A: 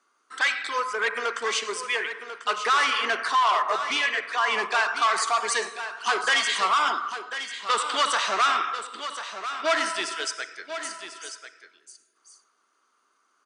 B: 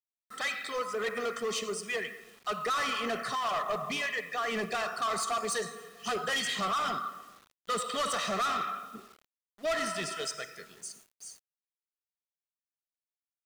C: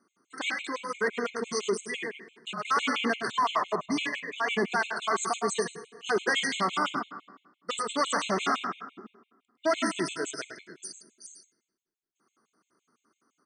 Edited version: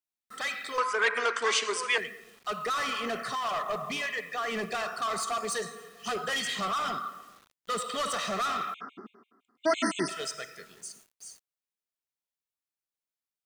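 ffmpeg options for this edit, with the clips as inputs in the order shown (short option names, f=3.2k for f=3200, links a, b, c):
-filter_complex "[1:a]asplit=3[a][b][c];[a]atrim=end=0.782[d];[0:a]atrim=start=0.778:end=1.982[e];[b]atrim=start=1.978:end=8.742[f];[2:a]atrim=start=8.738:end=10.092[g];[c]atrim=start=10.088[h];[d][e]acrossfade=d=0.004:c1=hsin:c2=hsin[i];[i][f]acrossfade=d=0.004:c1=hsin:c2=hsin[j];[j][g]acrossfade=d=0.004:c1=hsin:c2=hsin[k];[k][h]acrossfade=d=0.004:c1=hsin:c2=hsin"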